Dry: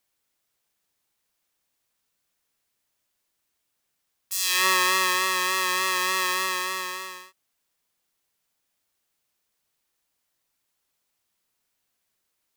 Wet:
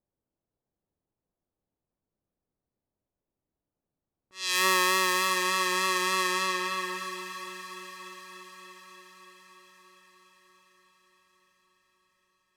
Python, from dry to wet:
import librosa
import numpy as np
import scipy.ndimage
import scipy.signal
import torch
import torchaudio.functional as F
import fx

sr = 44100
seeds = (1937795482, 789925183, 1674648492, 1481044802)

p1 = fx.env_lowpass(x, sr, base_hz=680.0, full_db=-19.0)
p2 = fx.low_shelf(p1, sr, hz=460.0, db=8.5)
p3 = p2 + fx.echo_diffused(p2, sr, ms=625, feedback_pct=59, wet_db=-11, dry=0)
y = p3 * 10.0 ** (-3.5 / 20.0)